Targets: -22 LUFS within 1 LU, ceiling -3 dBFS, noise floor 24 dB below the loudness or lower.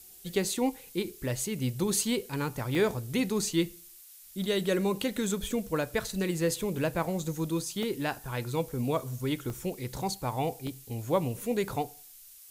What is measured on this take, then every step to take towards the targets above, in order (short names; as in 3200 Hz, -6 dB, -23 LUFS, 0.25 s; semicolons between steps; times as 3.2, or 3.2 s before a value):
dropouts 6; longest dropout 1.4 ms; noise floor -52 dBFS; noise floor target -55 dBFS; loudness -31.0 LUFS; peak -15.0 dBFS; loudness target -22.0 LUFS
-> interpolate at 1.41/2.75/6.56/7.83/9.5/10.67, 1.4 ms; noise print and reduce 6 dB; gain +9 dB